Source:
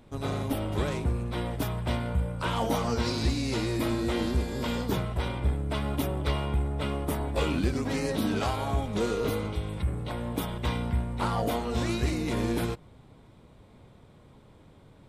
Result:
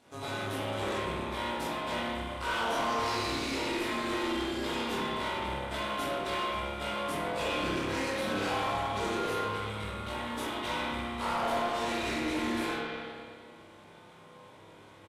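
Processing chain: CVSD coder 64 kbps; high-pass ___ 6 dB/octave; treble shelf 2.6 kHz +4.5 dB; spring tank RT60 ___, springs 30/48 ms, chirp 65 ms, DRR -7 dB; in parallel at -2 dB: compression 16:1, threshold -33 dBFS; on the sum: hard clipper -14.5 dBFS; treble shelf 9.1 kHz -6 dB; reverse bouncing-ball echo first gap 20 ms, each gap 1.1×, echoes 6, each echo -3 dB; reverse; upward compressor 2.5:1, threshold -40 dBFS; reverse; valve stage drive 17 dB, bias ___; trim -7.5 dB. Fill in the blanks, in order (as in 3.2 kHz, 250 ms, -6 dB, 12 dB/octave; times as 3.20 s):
540 Hz, 1.7 s, 0.45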